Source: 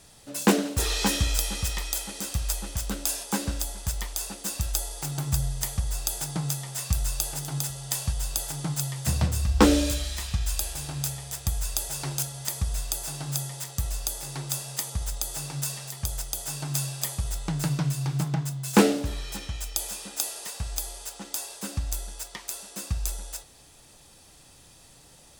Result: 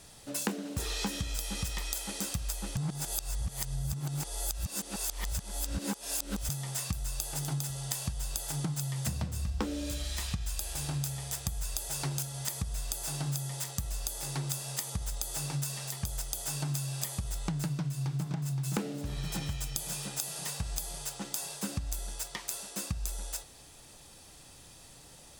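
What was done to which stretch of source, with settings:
2.77–6.49 s: reverse
17.73–18.52 s: echo throw 520 ms, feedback 60%, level -7.5 dB
whole clip: dynamic bell 180 Hz, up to +5 dB, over -40 dBFS, Q 1.1; compression 16:1, threshold -30 dBFS

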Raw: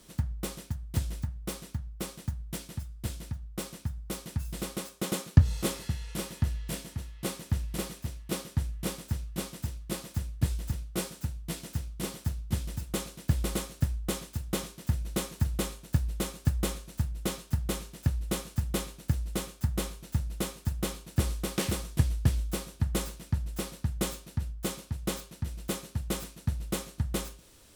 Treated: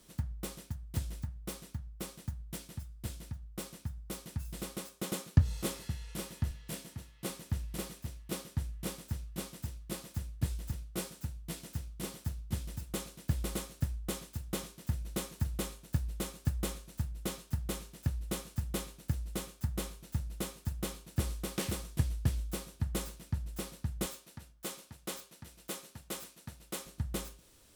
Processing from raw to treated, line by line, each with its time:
6.51–7.30 s: high-pass 89 Hz
24.06–26.86 s: high-pass 430 Hz 6 dB/octave
whole clip: treble shelf 11 kHz +3 dB; trim -5.5 dB

